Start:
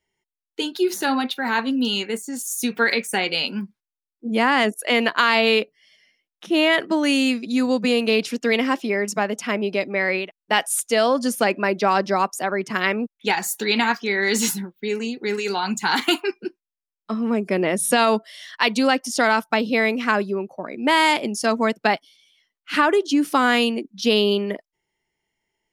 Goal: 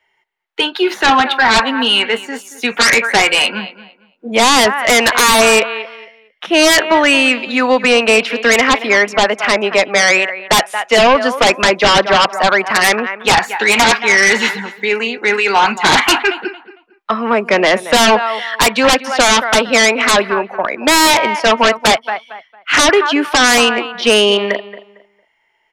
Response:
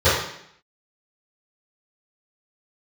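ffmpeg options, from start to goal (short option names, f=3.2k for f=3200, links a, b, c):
-filter_complex "[0:a]asplit=2[a][b];[b]adelay=227,lowpass=f=2.9k:p=1,volume=-16.5dB,asplit=2[c][d];[d]adelay=227,lowpass=f=2.9k:p=1,volume=0.26,asplit=2[e][f];[f]adelay=227,lowpass=f=2.9k:p=1,volume=0.26[g];[a][c][e][g]amix=inputs=4:normalize=0,acrossover=split=160|620|3000[h][i][j][k];[j]aeval=exprs='0.473*sin(PI/2*6.31*val(0)/0.473)':c=same[l];[k]acompressor=threshold=-39dB:ratio=6[m];[h][i][l][m]amix=inputs=4:normalize=0"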